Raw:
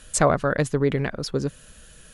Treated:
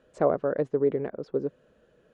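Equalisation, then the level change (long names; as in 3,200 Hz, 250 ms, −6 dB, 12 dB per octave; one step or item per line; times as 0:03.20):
resonant band-pass 440 Hz, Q 1.6
high-frequency loss of the air 58 metres
0.0 dB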